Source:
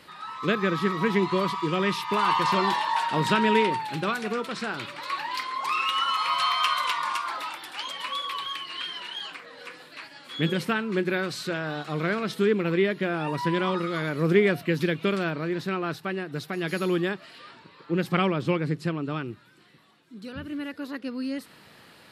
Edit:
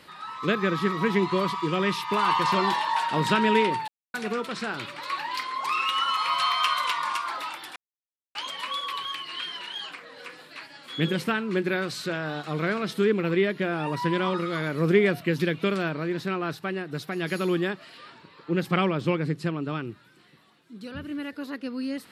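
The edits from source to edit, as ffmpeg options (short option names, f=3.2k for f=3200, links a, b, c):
-filter_complex "[0:a]asplit=4[a][b][c][d];[a]atrim=end=3.88,asetpts=PTS-STARTPTS,afade=t=out:st=3.876:d=0.004:c=hsin[e];[b]atrim=start=3.88:end=4.14,asetpts=PTS-STARTPTS,volume=0[f];[c]atrim=start=4.14:end=7.76,asetpts=PTS-STARTPTS,afade=t=in:d=0.004:c=hsin,afade=t=out:st=3.616:d=0.004:c=hsin,apad=pad_dur=0.59[g];[d]atrim=start=7.76,asetpts=PTS-STARTPTS,afade=t=in:d=0.004:c=hsin[h];[e][f][g][h]concat=n=4:v=0:a=1"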